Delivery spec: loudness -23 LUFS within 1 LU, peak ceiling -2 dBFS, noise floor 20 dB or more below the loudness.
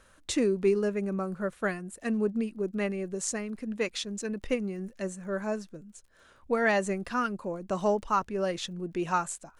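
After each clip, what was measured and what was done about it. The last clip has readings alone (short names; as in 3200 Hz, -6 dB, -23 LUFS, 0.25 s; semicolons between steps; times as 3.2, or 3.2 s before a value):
ticks 32/s; loudness -30.5 LUFS; peak -14.5 dBFS; loudness target -23.0 LUFS
-> de-click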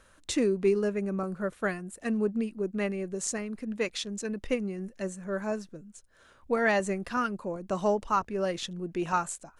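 ticks 0/s; loudness -30.5 LUFS; peak -14.5 dBFS; loudness target -23.0 LUFS
-> gain +7.5 dB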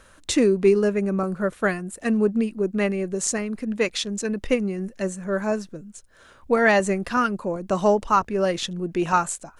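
loudness -23.0 LUFS; peak -7.0 dBFS; noise floor -53 dBFS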